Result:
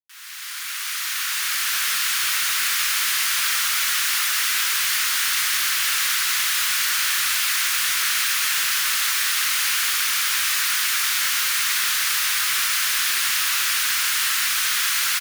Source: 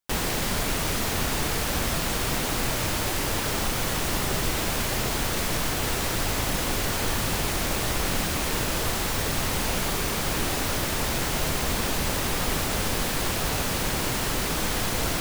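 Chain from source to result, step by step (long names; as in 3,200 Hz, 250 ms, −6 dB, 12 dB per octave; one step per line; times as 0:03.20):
fade in at the beginning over 1.83 s
Butterworth high-pass 1,300 Hz 36 dB per octave
notch filter 7,700 Hz, Q 21
in parallel at −3.5 dB: sine wavefolder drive 5 dB, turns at −18.5 dBFS
on the sum: single-tap delay 1,173 ms −5.5 dB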